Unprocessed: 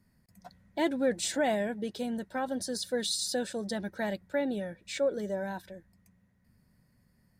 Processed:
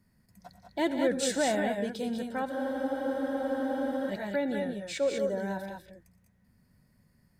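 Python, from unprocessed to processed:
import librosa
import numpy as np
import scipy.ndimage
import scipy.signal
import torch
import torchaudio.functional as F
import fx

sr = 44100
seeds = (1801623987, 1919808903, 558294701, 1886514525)

y = fx.echo_multitap(x, sr, ms=(88, 117, 182, 202), db=(-17.5, -16.0, -10.5, -5.5))
y = fx.spec_freeze(y, sr, seeds[0], at_s=2.54, hold_s=1.56)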